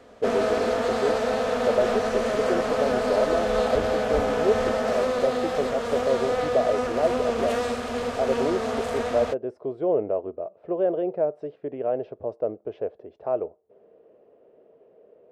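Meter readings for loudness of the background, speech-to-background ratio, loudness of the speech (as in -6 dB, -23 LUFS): -26.0 LUFS, -2.5 dB, -28.5 LUFS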